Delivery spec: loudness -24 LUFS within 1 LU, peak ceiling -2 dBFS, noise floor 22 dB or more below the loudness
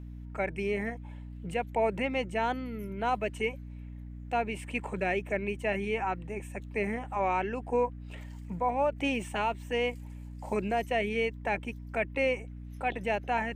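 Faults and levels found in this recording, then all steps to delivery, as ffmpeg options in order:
hum 60 Hz; highest harmonic 300 Hz; hum level -40 dBFS; loudness -32.0 LUFS; peak level -17.0 dBFS; loudness target -24.0 LUFS
-> -af "bandreject=f=60:t=h:w=6,bandreject=f=120:t=h:w=6,bandreject=f=180:t=h:w=6,bandreject=f=240:t=h:w=6,bandreject=f=300:t=h:w=6"
-af "volume=2.51"

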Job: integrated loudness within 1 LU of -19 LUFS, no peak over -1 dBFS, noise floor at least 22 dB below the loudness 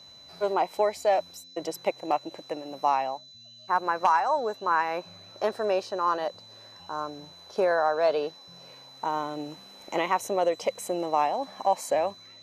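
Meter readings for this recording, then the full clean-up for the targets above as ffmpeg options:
steady tone 4 kHz; tone level -48 dBFS; loudness -28.0 LUFS; peak level -11.5 dBFS; loudness target -19.0 LUFS
-> -af "bandreject=f=4000:w=30"
-af "volume=2.82"

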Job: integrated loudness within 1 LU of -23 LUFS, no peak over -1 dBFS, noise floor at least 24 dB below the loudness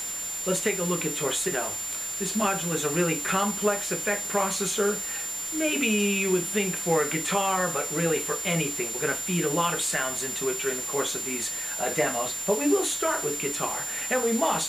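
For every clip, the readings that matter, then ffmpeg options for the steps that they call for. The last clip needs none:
steady tone 7.2 kHz; tone level -31 dBFS; noise floor -33 dBFS; noise floor target -50 dBFS; loudness -26.0 LUFS; peak level -10.5 dBFS; loudness target -23.0 LUFS
-> -af "bandreject=f=7200:w=30"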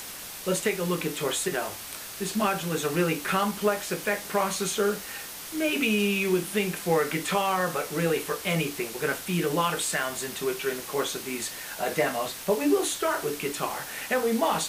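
steady tone not found; noise floor -40 dBFS; noise floor target -52 dBFS
-> -af "afftdn=nr=12:nf=-40"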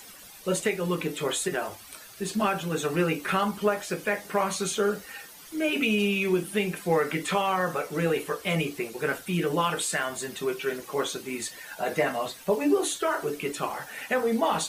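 noise floor -47 dBFS; noise floor target -52 dBFS
-> -af "afftdn=nr=6:nf=-47"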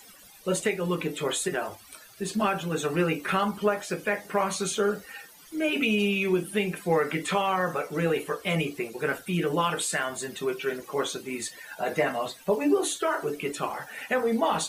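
noise floor -51 dBFS; noise floor target -52 dBFS
-> -af "afftdn=nr=6:nf=-51"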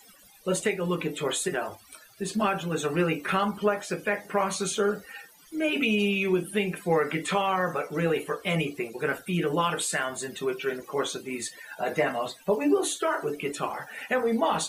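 noise floor -55 dBFS; loudness -28.0 LUFS; peak level -11.5 dBFS; loudness target -23.0 LUFS
-> -af "volume=1.78"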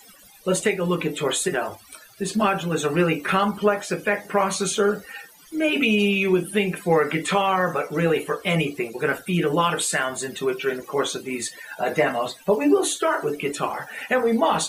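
loudness -23.0 LUFS; peak level -6.5 dBFS; noise floor -49 dBFS

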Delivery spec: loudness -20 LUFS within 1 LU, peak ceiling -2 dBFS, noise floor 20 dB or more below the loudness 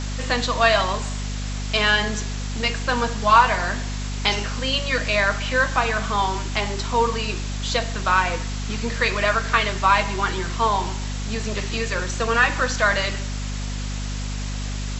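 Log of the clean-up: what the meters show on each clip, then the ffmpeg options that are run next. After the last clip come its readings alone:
hum 50 Hz; highest harmonic 250 Hz; hum level -25 dBFS; noise floor -28 dBFS; noise floor target -42 dBFS; loudness -22.0 LUFS; peak level -2.5 dBFS; loudness target -20.0 LUFS
-> -af "bandreject=f=50:t=h:w=6,bandreject=f=100:t=h:w=6,bandreject=f=150:t=h:w=6,bandreject=f=200:t=h:w=6,bandreject=f=250:t=h:w=6"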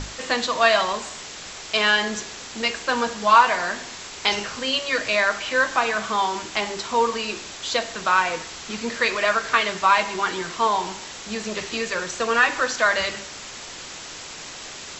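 hum not found; noise floor -38 dBFS; noise floor target -42 dBFS
-> -af "afftdn=nr=6:nf=-38"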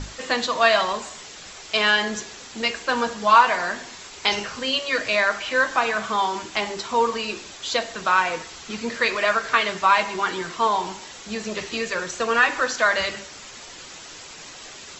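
noise floor -41 dBFS; noise floor target -42 dBFS
-> -af "afftdn=nr=6:nf=-41"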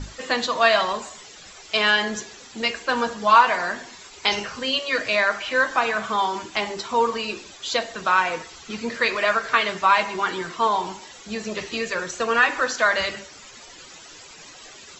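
noise floor -45 dBFS; loudness -22.0 LUFS; peak level -3.0 dBFS; loudness target -20.0 LUFS
-> -af "volume=1.26,alimiter=limit=0.794:level=0:latency=1"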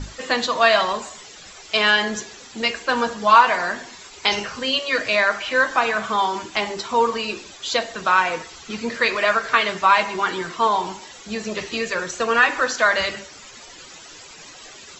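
loudness -20.0 LUFS; peak level -2.0 dBFS; noise floor -43 dBFS

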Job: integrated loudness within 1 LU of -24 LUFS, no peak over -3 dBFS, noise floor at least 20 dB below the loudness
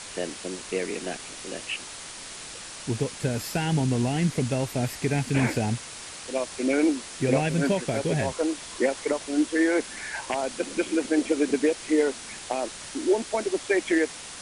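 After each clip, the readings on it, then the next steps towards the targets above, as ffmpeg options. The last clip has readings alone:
noise floor -40 dBFS; noise floor target -47 dBFS; loudness -27.0 LUFS; peak level -10.5 dBFS; loudness target -24.0 LUFS
-> -af "afftdn=nr=7:nf=-40"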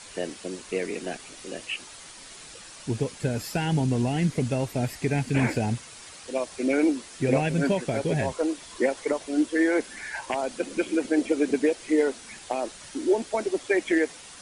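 noise floor -45 dBFS; noise floor target -47 dBFS
-> -af "afftdn=nr=6:nf=-45"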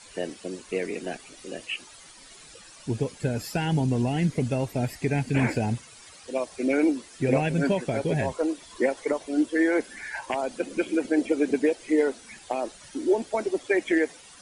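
noise floor -49 dBFS; loudness -27.0 LUFS; peak level -11.0 dBFS; loudness target -24.0 LUFS
-> -af "volume=1.41"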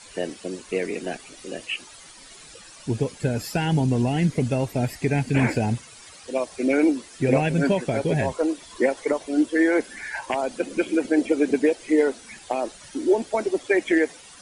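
loudness -24.0 LUFS; peak level -8.0 dBFS; noise floor -46 dBFS

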